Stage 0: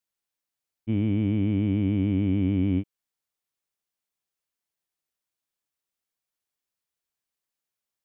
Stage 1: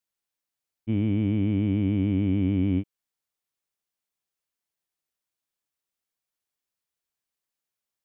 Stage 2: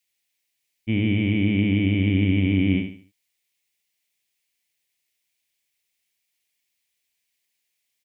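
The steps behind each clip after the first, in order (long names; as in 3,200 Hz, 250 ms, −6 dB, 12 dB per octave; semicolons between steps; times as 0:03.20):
no processing that can be heard
high shelf with overshoot 1,700 Hz +7.5 dB, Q 3; repeating echo 71 ms, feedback 34%, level −7.5 dB; level +2.5 dB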